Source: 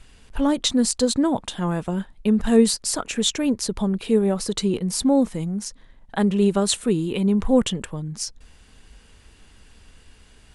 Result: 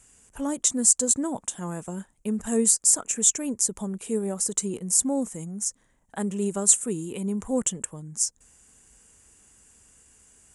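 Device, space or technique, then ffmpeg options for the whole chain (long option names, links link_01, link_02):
budget condenser microphone: -af "highpass=frequency=100:poles=1,highshelf=frequency=5500:width_type=q:width=3:gain=10.5,volume=-8dB"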